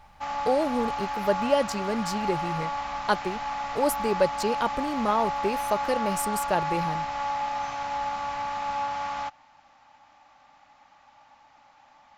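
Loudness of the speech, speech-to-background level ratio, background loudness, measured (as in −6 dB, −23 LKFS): −28.5 LKFS, 2.0 dB, −30.5 LKFS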